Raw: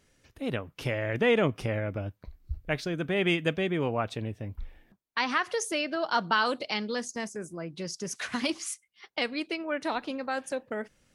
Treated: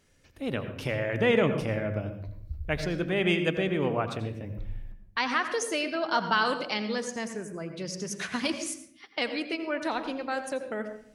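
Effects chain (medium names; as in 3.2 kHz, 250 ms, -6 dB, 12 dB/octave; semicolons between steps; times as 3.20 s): hum notches 60/120 Hz; on a send: reverberation RT60 0.60 s, pre-delay 76 ms, DRR 8 dB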